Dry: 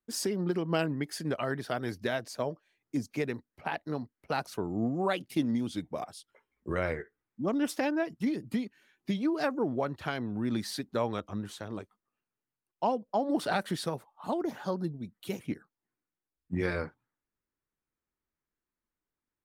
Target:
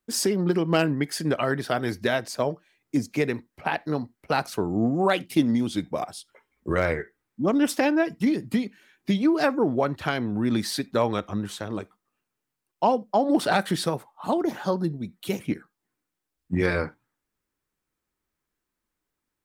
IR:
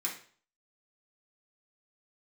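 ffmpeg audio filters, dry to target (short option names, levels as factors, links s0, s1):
-filter_complex "[0:a]asoftclip=type=hard:threshold=0.133,asplit=2[s0][s1];[1:a]atrim=start_sample=2205,atrim=end_sample=4410[s2];[s1][s2]afir=irnorm=-1:irlink=0,volume=0.106[s3];[s0][s3]amix=inputs=2:normalize=0,volume=2.37"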